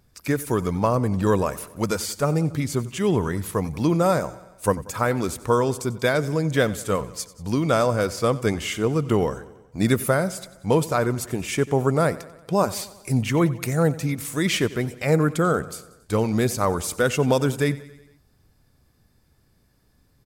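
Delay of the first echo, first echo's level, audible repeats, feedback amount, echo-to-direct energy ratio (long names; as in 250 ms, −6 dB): 92 ms, −18.5 dB, 4, 59%, −16.5 dB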